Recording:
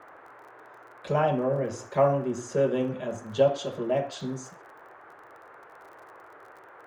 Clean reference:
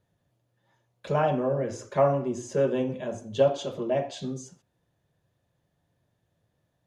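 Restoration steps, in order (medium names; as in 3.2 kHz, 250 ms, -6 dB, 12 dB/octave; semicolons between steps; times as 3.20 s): de-click; noise print and reduce 24 dB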